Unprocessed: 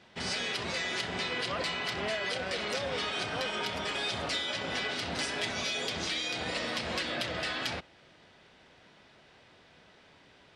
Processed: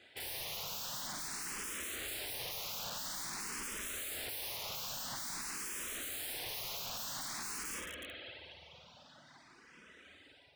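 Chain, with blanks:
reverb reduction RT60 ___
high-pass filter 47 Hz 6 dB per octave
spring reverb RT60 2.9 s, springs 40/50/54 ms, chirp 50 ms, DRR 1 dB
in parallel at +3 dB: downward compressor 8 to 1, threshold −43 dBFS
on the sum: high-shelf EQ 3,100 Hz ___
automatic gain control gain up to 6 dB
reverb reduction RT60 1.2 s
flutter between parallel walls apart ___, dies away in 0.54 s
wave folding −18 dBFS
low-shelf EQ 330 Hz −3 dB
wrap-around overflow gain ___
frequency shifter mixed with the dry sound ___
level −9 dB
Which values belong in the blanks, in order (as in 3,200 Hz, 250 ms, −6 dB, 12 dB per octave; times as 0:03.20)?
1.5 s, +6 dB, 9.2 metres, 25 dB, +0.49 Hz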